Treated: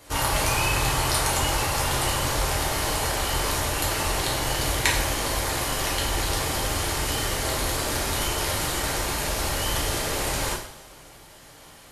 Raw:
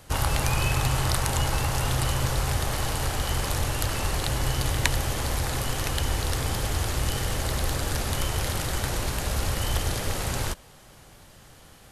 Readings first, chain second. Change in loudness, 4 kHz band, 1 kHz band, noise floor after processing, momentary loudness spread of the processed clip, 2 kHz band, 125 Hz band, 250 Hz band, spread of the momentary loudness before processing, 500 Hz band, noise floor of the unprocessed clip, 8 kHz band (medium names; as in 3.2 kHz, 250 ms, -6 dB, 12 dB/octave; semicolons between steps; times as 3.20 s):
+2.5 dB, +4.5 dB, +4.5 dB, -48 dBFS, 4 LU, +4.5 dB, -3.5 dB, +1.5 dB, 4 LU, +4.0 dB, -51 dBFS, +5.0 dB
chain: bass shelf 140 Hz -10 dB; two-slope reverb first 0.54 s, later 1.8 s, from -18 dB, DRR -5 dB; trim -1.5 dB